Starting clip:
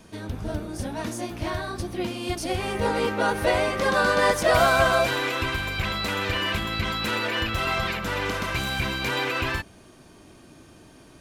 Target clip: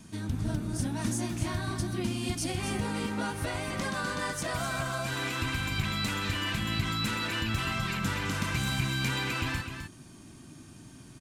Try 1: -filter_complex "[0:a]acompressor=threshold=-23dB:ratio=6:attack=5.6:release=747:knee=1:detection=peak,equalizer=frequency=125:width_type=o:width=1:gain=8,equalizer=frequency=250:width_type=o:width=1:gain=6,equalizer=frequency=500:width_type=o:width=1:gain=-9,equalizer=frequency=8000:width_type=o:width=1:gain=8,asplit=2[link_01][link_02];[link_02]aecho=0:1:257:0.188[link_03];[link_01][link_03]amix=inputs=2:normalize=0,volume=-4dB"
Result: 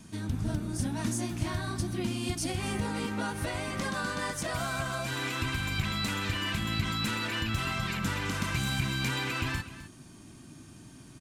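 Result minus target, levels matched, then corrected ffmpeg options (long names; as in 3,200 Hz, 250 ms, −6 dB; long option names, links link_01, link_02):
echo-to-direct −6.5 dB
-filter_complex "[0:a]acompressor=threshold=-23dB:ratio=6:attack=5.6:release=747:knee=1:detection=peak,equalizer=frequency=125:width_type=o:width=1:gain=8,equalizer=frequency=250:width_type=o:width=1:gain=6,equalizer=frequency=500:width_type=o:width=1:gain=-9,equalizer=frequency=8000:width_type=o:width=1:gain=8,asplit=2[link_01][link_02];[link_02]aecho=0:1:257:0.398[link_03];[link_01][link_03]amix=inputs=2:normalize=0,volume=-4dB"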